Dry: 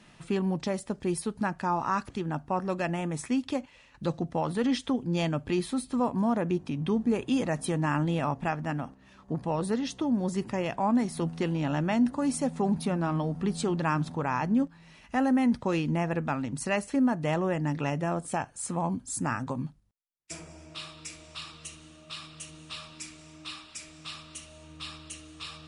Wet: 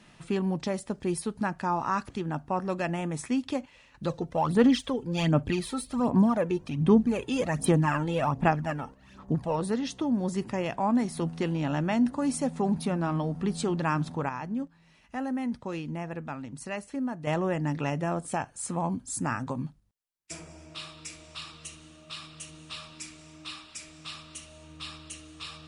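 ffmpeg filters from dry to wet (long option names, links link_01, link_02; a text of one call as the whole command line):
ffmpeg -i in.wav -filter_complex "[0:a]asplit=3[link_01][link_02][link_03];[link_01]afade=type=out:start_time=4.07:duration=0.02[link_04];[link_02]aphaser=in_gain=1:out_gain=1:delay=2.3:decay=0.59:speed=1.3:type=sinusoidal,afade=type=in:start_time=4.07:duration=0.02,afade=type=out:start_time=9.55:duration=0.02[link_05];[link_03]afade=type=in:start_time=9.55:duration=0.02[link_06];[link_04][link_05][link_06]amix=inputs=3:normalize=0,asplit=3[link_07][link_08][link_09];[link_07]atrim=end=14.292[link_10];[link_08]atrim=start=14.288:end=17.272,asetpts=PTS-STARTPTS,volume=-7dB[link_11];[link_09]atrim=start=17.268[link_12];[link_10][link_11]acrossfade=duration=0.004:curve1=hsin:curve2=hsin[link_13];[link_13][link_12]acrossfade=duration=0.004:curve1=hsin:curve2=hsin" out.wav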